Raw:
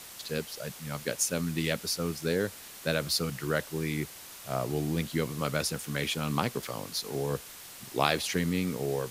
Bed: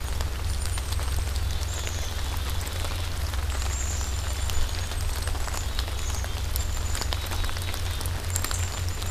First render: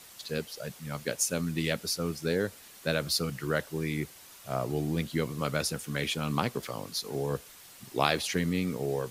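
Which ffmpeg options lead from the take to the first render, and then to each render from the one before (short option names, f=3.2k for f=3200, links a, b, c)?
-af "afftdn=nr=6:nf=-47"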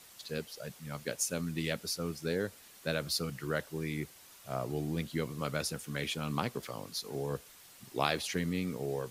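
-af "volume=-4.5dB"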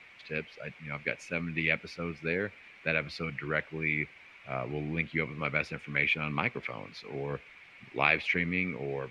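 -af "lowpass=f=2.3k:t=q:w=7.2"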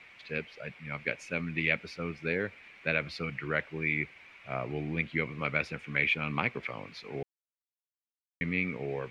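-filter_complex "[0:a]asettb=1/sr,asplit=3[a][b][c];[a]atrim=end=0.604[d];[b]atrim=start=0.6:end=1,asetpts=PTS-STARTPTS,afade=t=in:d=0.004:c=qsin,afade=t=out:st=0.396:d=0.004:c=qsin,bandreject=f=6.4k:w=12[e];[c]atrim=start=0.996[f];[d][e]acrossfade=d=0.004:c1=hsin:c2=qsin[g];[g][f]acrossfade=d=0.004:c1=qsin:c2=hsin,asplit=3[h][i][j];[h]atrim=end=7.23,asetpts=PTS-STARTPTS,afade=t=out:st=7.226:d=0.004:c=hsin[k];[i]atrim=start=7.23:end=8.41,asetpts=PTS-STARTPTS,volume=0[l];[j]atrim=start=8.41,asetpts=PTS-STARTPTS,afade=t=in:d=0.004:c=hsin[m];[k][l][m]concat=n=3:v=0:a=1"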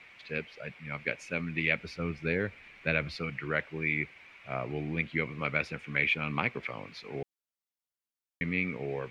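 -filter_complex "[0:a]asettb=1/sr,asplit=3[a][b][c];[a]atrim=end=1.784[d];[b]atrim=start=1.78:end=3.17,asetpts=PTS-STARTPTS,afade=t=in:d=0.004:c=qsin,afade=t=out:st=1.386:d=0.004:c=qsin,lowshelf=f=110:g=11.5[e];[c]atrim=start=3.166[f];[d][e]acrossfade=d=0.004:c1=hsin:c2=qsin[g];[g][f]acrossfade=d=0.004:c1=qsin:c2=hsin"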